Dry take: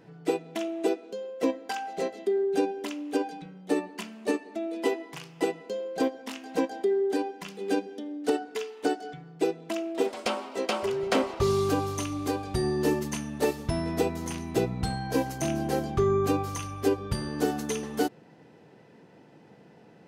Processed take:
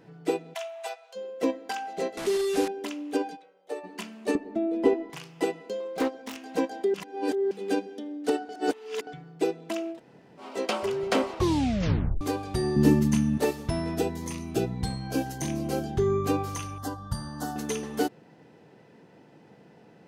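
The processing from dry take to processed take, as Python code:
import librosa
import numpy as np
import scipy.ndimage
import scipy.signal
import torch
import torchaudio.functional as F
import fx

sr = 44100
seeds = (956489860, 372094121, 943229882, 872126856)

y = fx.steep_highpass(x, sr, hz=620.0, slope=48, at=(0.53, 1.15), fade=0.02)
y = fx.delta_mod(y, sr, bps=64000, step_db=-28.0, at=(2.17, 2.68))
y = fx.ladder_highpass(y, sr, hz=450.0, resonance_pct=50, at=(3.35, 3.83), fade=0.02)
y = fx.tilt_eq(y, sr, slope=-4.0, at=(4.35, 5.1))
y = fx.self_delay(y, sr, depth_ms=0.28, at=(5.8, 6.38))
y = fx.low_shelf_res(y, sr, hz=320.0, db=10.0, q=1.5, at=(12.76, 13.38))
y = fx.notch_cascade(y, sr, direction='rising', hz=1.6, at=(13.94, 16.25), fade=0.02)
y = fx.fixed_phaser(y, sr, hz=1000.0, stages=4, at=(16.78, 17.56))
y = fx.edit(y, sr, fx.reverse_span(start_s=6.94, length_s=0.57),
    fx.reverse_span(start_s=8.49, length_s=0.58),
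    fx.room_tone_fill(start_s=9.95, length_s=0.47, crossfade_s=0.1),
    fx.tape_stop(start_s=11.36, length_s=0.85), tone=tone)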